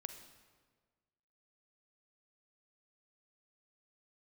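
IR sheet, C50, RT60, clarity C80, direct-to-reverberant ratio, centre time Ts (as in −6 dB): 8.5 dB, 1.5 s, 10.0 dB, 8.0 dB, 19 ms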